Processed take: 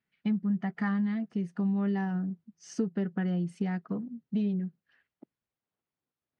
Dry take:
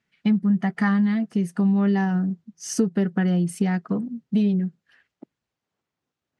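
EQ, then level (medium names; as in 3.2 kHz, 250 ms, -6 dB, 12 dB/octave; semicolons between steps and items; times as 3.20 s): distance through air 120 m; -8.5 dB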